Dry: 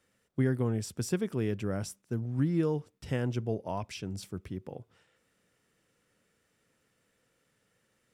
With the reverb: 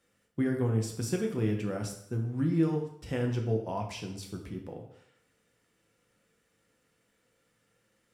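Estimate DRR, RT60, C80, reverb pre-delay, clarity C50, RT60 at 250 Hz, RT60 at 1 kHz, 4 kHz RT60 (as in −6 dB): 1.0 dB, 0.70 s, 10.5 dB, 4 ms, 7.5 dB, 0.70 s, 0.70 s, 0.60 s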